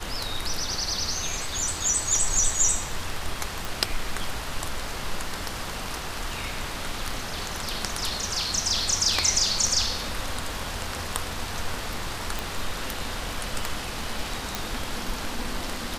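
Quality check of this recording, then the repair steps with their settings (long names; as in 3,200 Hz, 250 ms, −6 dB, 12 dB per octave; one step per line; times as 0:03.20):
0:03.65: click
0:12.39: click
0:14.55: click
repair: click removal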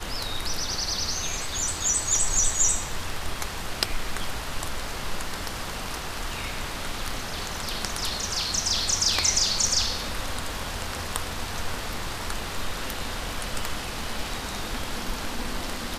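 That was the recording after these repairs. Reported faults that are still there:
none of them is left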